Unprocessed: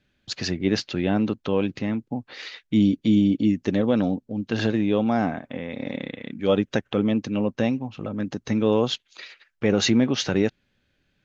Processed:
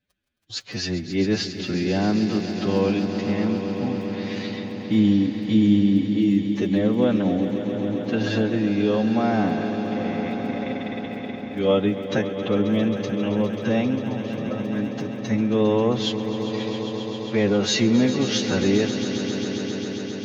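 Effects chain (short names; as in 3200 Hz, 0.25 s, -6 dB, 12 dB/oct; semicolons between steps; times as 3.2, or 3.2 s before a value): crackle 10/s -37 dBFS; gate -56 dBFS, range -11 dB; time stretch by phase-locked vocoder 1.8×; on a send: swelling echo 0.134 s, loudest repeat 5, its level -13 dB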